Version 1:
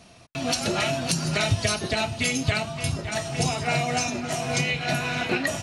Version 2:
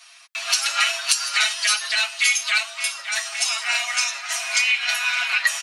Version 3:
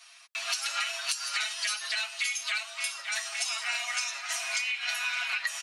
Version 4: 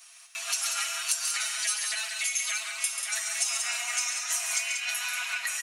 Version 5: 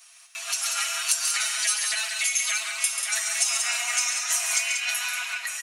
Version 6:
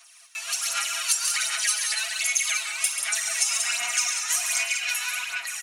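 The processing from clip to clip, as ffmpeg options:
ffmpeg -i in.wav -af "highpass=frequency=1200:width=0.5412,highpass=frequency=1200:width=1.3066,aecho=1:1:7.3:0.82,volume=5.5dB" out.wav
ffmpeg -i in.wav -af "acompressor=threshold=-22dB:ratio=6,volume=-5.5dB" out.wav
ffmpeg -i in.wav -filter_complex "[0:a]aexciter=amount=3.7:drive=4.4:freq=6200,asplit=2[link_01][link_02];[link_02]aecho=0:1:138|188:0.422|0.473[link_03];[link_01][link_03]amix=inputs=2:normalize=0,volume=-2.5dB" out.wav
ffmpeg -i in.wav -af "dynaudnorm=framelen=150:gausssize=9:maxgain=4.5dB" out.wav
ffmpeg -i in.wav -filter_complex "[0:a]aphaser=in_gain=1:out_gain=1:delay=2.3:decay=0.53:speed=1.3:type=sinusoidal,acrossover=split=1300|5800[link_01][link_02][link_03];[link_01]asoftclip=type=tanh:threshold=-35dB[link_04];[link_04][link_02][link_03]amix=inputs=3:normalize=0,volume=-1.5dB" out.wav

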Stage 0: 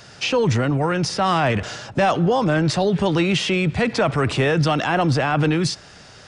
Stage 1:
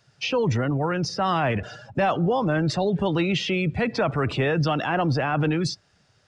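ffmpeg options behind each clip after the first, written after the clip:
ffmpeg -i in.wav -af "afftdn=noise_reduction=16:noise_floor=-31,volume=-4dB" out.wav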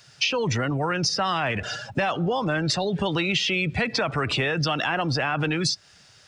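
ffmpeg -i in.wav -af "tiltshelf=frequency=1400:gain=-6,acompressor=threshold=-30dB:ratio=6,volume=8.5dB" out.wav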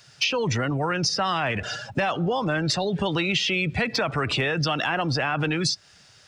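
ffmpeg -i in.wav -af "asoftclip=type=hard:threshold=-13.5dB" out.wav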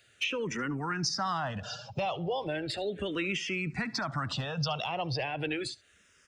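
ffmpeg -i in.wav -filter_complex "[0:a]aecho=1:1:72:0.0841,asplit=2[link_01][link_02];[link_02]afreqshift=-0.35[link_03];[link_01][link_03]amix=inputs=2:normalize=1,volume=-5.5dB" out.wav

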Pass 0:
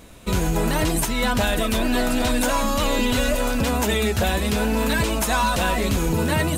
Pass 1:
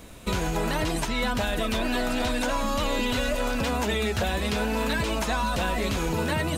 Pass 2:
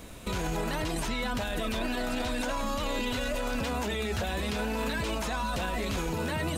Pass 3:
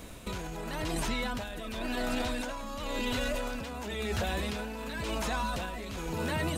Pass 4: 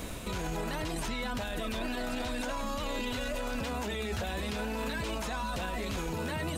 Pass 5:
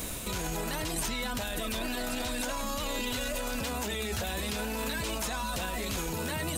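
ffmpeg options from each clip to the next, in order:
ffmpeg -i in.wav -filter_complex "[0:a]acrossover=split=470|6200[link_01][link_02][link_03];[link_01]acompressor=threshold=-27dB:ratio=4[link_04];[link_02]acompressor=threshold=-27dB:ratio=4[link_05];[link_03]acompressor=threshold=-47dB:ratio=4[link_06];[link_04][link_05][link_06]amix=inputs=3:normalize=0" out.wav
ffmpeg -i in.wav -af "alimiter=limit=-23dB:level=0:latency=1:release=22" out.wav
ffmpeg -i in.wav -af "tremolo=f=0.94:d=0.62" out.wav
ffmpeg -i in.wav -af "alimiter=level_in=9dB:limit=-24dB:level=0:latency=1,volume=-9dB,volume=6.5dB" out.wav
ffmpeg -i in.wav -af "crystalizer=i=2:c=0" out.wav

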